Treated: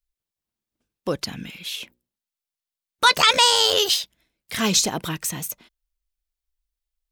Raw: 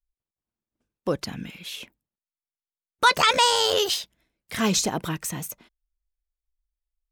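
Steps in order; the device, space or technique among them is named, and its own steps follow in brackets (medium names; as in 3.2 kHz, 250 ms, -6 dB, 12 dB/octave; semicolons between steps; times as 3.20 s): presence and air boost (peaking EQ 3.8 kHz +5 dB 1.7 oct; treble shelf 9.1 kHz +6.5 dB); 1.75–3.14 s: hum notches 60/120/180/240/300/360/420/480/540 Hz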